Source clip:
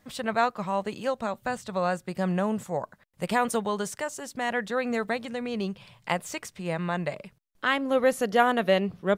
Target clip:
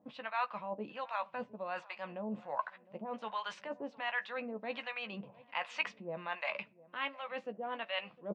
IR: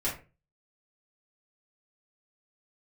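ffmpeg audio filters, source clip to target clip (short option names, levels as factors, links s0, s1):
-filter_complex "[0:a]areverse,acompressor=threshold=0.0126:ratio=10,areverse,acrossover=split=670[s0][s1];[s0]aeval=exprs='val(0)*(1-1/2+1/2*cos(2*PI*1.2*n/s))':c=same[s2];[s1]aeval=exprs='val(0)*(1-1/2-1/2*cos(2*PI*1.2*n/s))':c=same[s3];[s2][s3]amix=inputs=2:normalize=0,atempo=1.1,highpass=300,equalizer=f=390:t=q:w=4:g=-9,equalizer=f=1000:t=q:w=4:g=5,equalizer=f=2600:t=q:w=4:g=8,lowpass=f=3800:w=0.5412,lowpass=f=3800:w=1.3066,asplit=2[s4][s5];[s5]adelay=14,volume=0.355[s6];[s4][s6]amix=inputs=2:normalize=0,asplit=2[s7][s8];[s8]adelay=707,lowpass=f=1200:p=1,volume=0.1,asplit=2[s9][s10];[s10]adelay=707,lowpass=f=1200:p=1,volume=0.51,asplit=2[s11][s12];[s12]adelay=707,lowpass=f=1200:p=1,volume=0.51,asplit=2[s13][s14];[s14]adelay=707,lowpass=f=1200:p=1,volume=0.51[s15];[s7][s9][s11][s13][s15]amix=inputs=5:normalize=0,asplit=2[s16][s17];[1:a]atrim=start_sample=2205[s18];[s17][s18]afir=irnorm=-1:irlink=0,volume=0.0473[s19];[s16][s19]amix=inputs=2:normalize=0,volume=2.37"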